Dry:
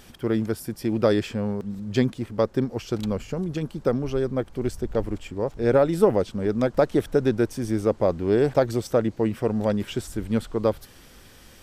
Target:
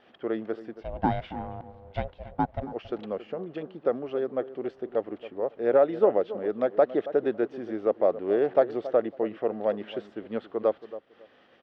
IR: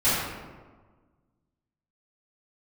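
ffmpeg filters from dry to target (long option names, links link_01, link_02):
-filter_complex "[0:a]aeval=exprs='val(0)+0.00282*(sin(2*PI*50*n/s)+sin(2*PI*2*50*n/s)/2+sin(2*PI*3*50*n/s)/3+sin(2*PI*4*50*n/s)/4+sin(2*PI*5*50*n/s)/5)':channel_layout=same,acompressor=mode=upward:threshold=-35dB:ratio=2.5,highpass=430,equalizer=frequency=670:width_type=q:width=4:gain=3,equalizer=frequency=960:width_type=q:width=4:gain=-7,equalizer=frequency=1500:width_type=q:width=4:gain=-5,equalizer=frequency=2300:width_type=q:width=4:gain=-8,lowpass=frequency=2700:width=0.5412,lowpass=frequency=2700:width=1.3066,asplit=3[link_01][link_02][link_03];[link_01]afade=type=out:start_time=0.74:duration=0.02[link_04];[link_02]aeval=exprs='val(0)*sin(2*PI*290*n/s)':channel_layout=same,afade=type=in:start_time=0.74:duration=0.02,afade=type=out:start_time=2.62:duration=0.02[link_05];[link_03]afade=type=in:start_time=2.62:duration=0.02[link_06];[link_04][link_05][link_06]amix=inputs=3:normalize=0,agate=range=-33dB:threshold=-47dB:ratio=3:detection=peak,asplit=2[link_07][link_08];[link_08]adelay=276,lowpass=frequency=1300:poles=1,volume=-14dB,asplit=2[link_09][link_10];[link_10]adelay=276,lowpass=frequency=1300:poles=1,volume=0.21[link_11];[link_07][link_09][link_11]amix=inputs=3:normalize=0"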